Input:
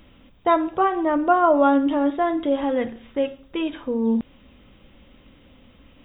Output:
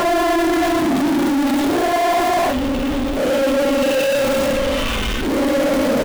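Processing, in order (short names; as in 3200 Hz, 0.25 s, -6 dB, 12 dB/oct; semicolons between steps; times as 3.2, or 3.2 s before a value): slices in reverse order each 0.139 s, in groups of 5; doubler 29 ms -4.5 dB; in parallel at -8 dB: bit-crush 5-bit; on the sum: Paulstretch 8.5×, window 0.05 s, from 2.53; power-law curve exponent 0.35; reverse; compressor, threshold -16 dBFS, peak gain reduction 9.5 dB; reverse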